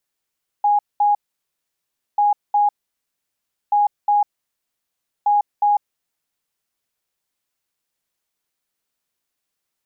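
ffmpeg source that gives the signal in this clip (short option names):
-f lavfi -i "aevalsrc='0.237*sin(2*PI*825*t)*clip(min(mod(mod(t,1.54),0.36),0.15-mod(mod(t,1.54),0.36))/0.005,0,1)*lt(mod(t,1.54),0.72)':d=6.16:s=44100"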